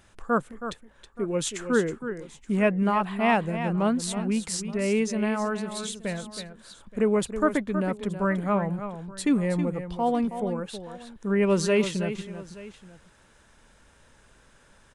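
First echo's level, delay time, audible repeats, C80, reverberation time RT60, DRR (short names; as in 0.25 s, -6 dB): -10.0 dB, 0.321 s, 2, none, none, none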